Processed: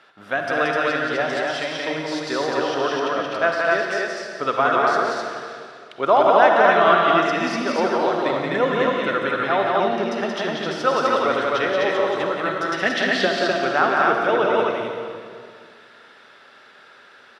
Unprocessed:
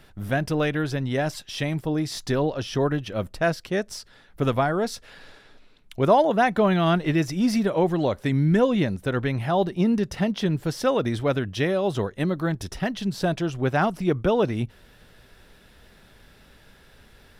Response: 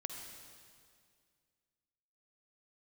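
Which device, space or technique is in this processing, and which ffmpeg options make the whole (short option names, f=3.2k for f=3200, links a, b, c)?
station announcement: -filter_complex "[0:a]asettb=1/sr,asplit=3[a][b][c];[a]atrim=end=12.684[d];[b]atrim=start=12.68:end=13.27,asetpts=PTS-STARTPTS,afade=t=in:d=0.004:c=qsin,afade=t=out:st=0.586:d=0.004:c=qsin,equalizer=f=125:t=o:w=1:g=-3,equalizer=f=250:t=o:w=1:g=9,equalizer=f=500:t=o:w=1:g=7,equalizer=f=1k:t=o:w=1:g=-8,equalizer=f=2k:t=o:w=1:g=10,equalizer=f=4k:t=o:w=1:g=6,equalizer=f=8k:t=o:w=1:g=3[e];[c]atrim=start=13.266[f];[d][e]acrossfade=d=0.004:c1=hsin:c2=qsin[g];[g][f]acrossfade=d=0.004:c1=qsin:c2=hsin,highpass=450,lowpass=4.7k,equalizer=f=1.3k:t=o:w=0.48:g=8,aecho=1:1:177.8|253.6:0.708|0.794[h];[1:a]atrim=start_sample=2205[i];[h][i]afir=irnorm=-1:irlink=0,volume=4.5dB"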